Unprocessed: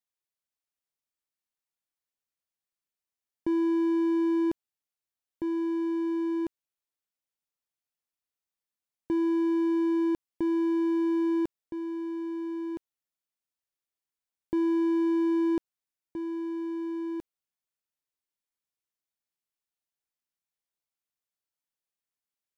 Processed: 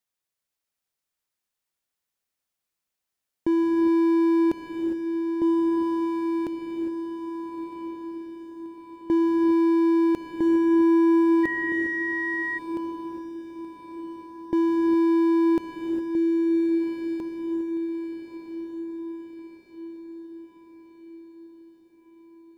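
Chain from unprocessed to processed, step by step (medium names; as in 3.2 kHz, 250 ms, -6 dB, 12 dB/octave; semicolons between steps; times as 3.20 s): echo that smears into a reverb 1261 ms, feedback 52%, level -7 dB; gated-style reverb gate 430 ms rising, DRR 4.5 dB; 11.43–12.57 s: whistle 1.9 kHz -31 dBFS; trim +5 dB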